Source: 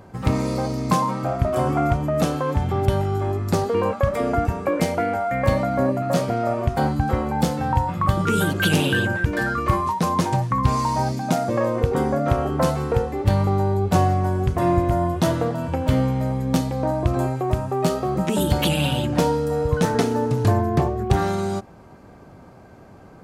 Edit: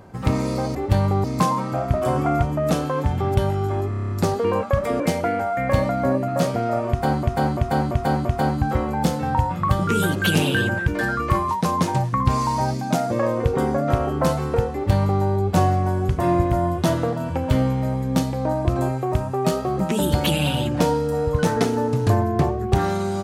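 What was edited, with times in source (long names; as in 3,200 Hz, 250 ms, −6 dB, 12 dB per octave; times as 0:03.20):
0:03.40: stutter 0.03 s, 8 plays
0:04.30–0:04.74: remove
0:06.63–0:06.97: repeat, 5 plays
0:13.11–0:13.60: duplicate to 0:00.75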